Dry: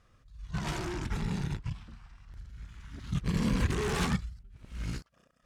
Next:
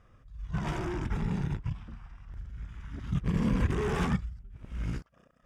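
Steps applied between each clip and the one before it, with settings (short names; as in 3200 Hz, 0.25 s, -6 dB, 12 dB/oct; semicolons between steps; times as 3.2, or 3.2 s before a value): high shelf 3000 Hz -11.5 dB; notch 4200 Hz, Q 5.3; in parallel at -2.5 dB: compressor, threshold -39 dBFS, peak gain reduction 15.5 dB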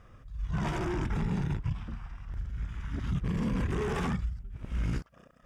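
limiter -28.5 dBFS, peak gain reduction 11 dB; gain +5.5 dB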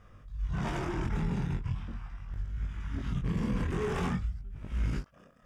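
chorus 0.42 Hz, delay 20 ms, depth 4.2 ms; gain +2 dB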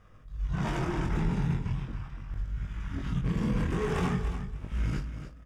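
feedback echo 0.287 s, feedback 19%, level -10 dB; in parallel at -6 dB: crossover distortion -48.5 dBFS; on the sum: reverb RT60 0.70 s, pre-delay 6 ms, DRR 13 dB; gain -1.5 dB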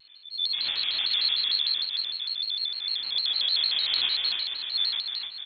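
feedback echo 0.277 s, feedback 50%, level -4 dB; inverted band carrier 3900 Hz; shaped vibrato square 6.6 Hz, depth 160 cents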